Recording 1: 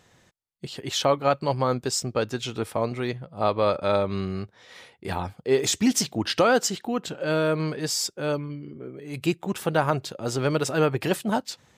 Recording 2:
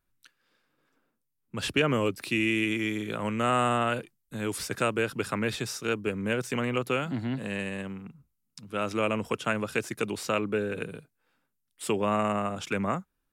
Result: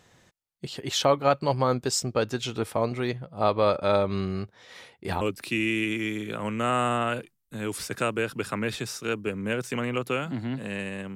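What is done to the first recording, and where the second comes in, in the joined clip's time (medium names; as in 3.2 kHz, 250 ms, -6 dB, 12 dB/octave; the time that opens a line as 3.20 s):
recording 1
5.21 s: go over to recording 2 from 2.01 s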